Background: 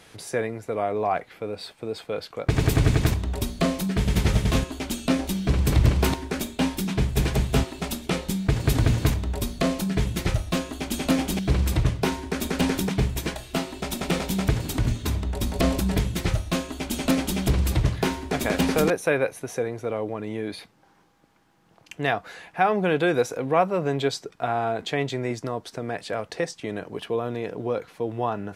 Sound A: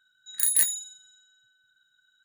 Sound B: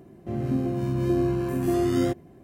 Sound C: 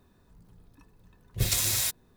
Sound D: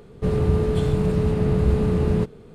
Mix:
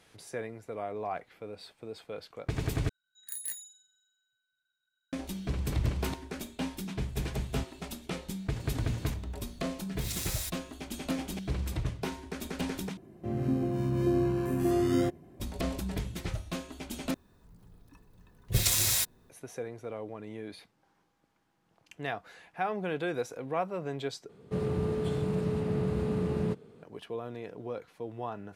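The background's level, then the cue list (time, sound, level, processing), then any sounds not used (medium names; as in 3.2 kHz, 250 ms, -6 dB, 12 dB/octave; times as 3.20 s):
background -11 dB
2.89 s: replace with A -16 dB
8.59 s: add C -3.5 dB + compression 4:1, threshold -30 dBFS
12.97 s: replace with B -3.5 dB
17.14 s: replace with C
24.29 s: replace with D -8 dB + high-pass 120 Hz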